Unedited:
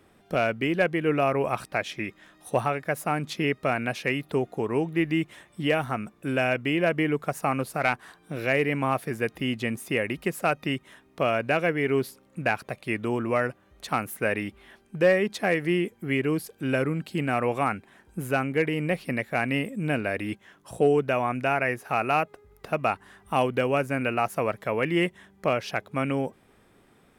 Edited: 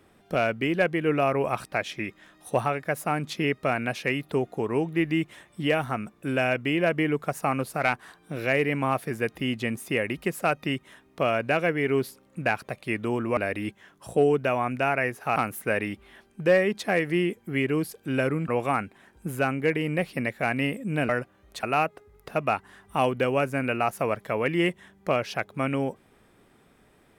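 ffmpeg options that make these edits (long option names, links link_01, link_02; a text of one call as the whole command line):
ffmpeg -i in.wav -filter_complex "[0:a]asplit=6[link_01][link_02][link_03][link_04][link_05][link_06];[link_01]atrim=end=13.372[link_07];[link_02]atrim=start=20.008:end=22.002[link_08];[link_03]atrim=start=13.908:end=17.032[link_09];[link_04]atrim=start=17.398:end=20.012[link_10];[link_05]atrim=start=13.368:end=13.912[link_11];[link_06]atrim=start=21.998[link_12];[link_07][link_08]acrossfade=duration=0.004:curve1=hsin:curve2=hsin[link_13];[link_13][link_09]acrossfade=duration=0.004:curve1=hsin:curve2=hsin[link_14];[link_14][link_10]acrossfade=duration=0.004:curve1=hsin:curve2=hsin[link_15];[link_15][link_11]acrossfade=duration=0.004:curve1=hsin:curve2=hsin[link_16];[link_16][link_12]acrossfade=duration=0.004:curve1=hsin:curve2=hsin" out.wav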